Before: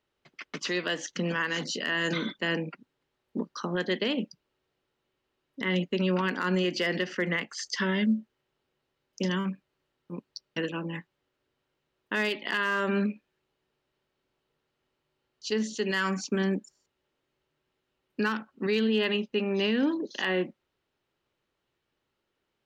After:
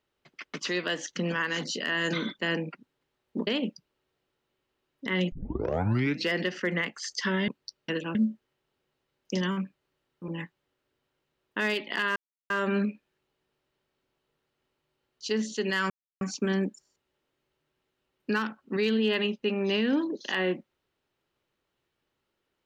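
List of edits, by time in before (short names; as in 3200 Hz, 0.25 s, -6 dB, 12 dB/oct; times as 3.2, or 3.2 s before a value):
3.47–4.02 cut
5.87 tape start 0.98 s
10.16–10.83 move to 8.03
12.71 insert silence 0.34 s
16.11 insert silence 0.31 s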